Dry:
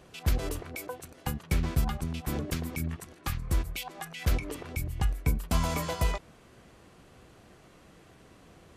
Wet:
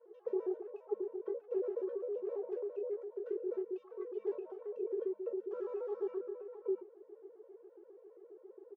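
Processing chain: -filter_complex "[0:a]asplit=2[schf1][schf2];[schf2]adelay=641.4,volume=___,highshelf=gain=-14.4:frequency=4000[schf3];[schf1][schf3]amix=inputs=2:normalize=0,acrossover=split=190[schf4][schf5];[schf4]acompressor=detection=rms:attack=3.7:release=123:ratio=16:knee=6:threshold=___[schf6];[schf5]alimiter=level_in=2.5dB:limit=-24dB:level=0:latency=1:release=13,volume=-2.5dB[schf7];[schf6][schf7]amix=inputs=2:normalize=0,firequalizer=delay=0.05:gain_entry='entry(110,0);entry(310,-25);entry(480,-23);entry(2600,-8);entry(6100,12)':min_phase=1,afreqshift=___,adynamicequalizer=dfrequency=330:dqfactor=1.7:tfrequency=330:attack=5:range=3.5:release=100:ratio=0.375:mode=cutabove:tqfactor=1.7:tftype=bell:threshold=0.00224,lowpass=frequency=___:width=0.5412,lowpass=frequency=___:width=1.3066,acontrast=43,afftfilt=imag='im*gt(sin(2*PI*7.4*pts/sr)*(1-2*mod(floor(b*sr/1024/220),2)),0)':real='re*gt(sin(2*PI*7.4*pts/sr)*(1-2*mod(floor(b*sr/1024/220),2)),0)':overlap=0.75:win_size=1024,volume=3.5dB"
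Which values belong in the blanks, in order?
-11dB, -36dB, 330, 1100, 1100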